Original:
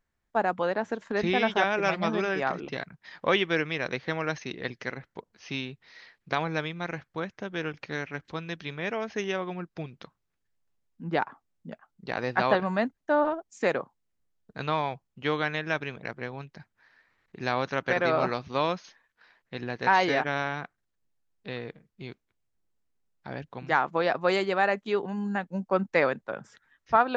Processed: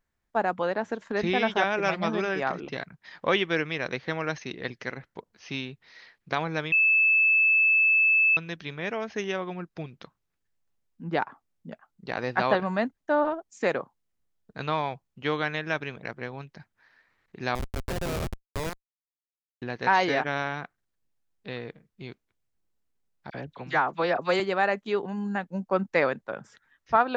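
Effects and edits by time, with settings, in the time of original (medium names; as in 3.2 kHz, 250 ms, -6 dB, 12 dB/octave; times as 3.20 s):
6.72–8.37 s: bleep 2.62 kHz -17.5 dBFS
17.55–19.62 s: Schmitt trigger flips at -23.5 dBFS
23.30–24.40 s: phase dispersion lows, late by 44 ms, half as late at 1.7 kHz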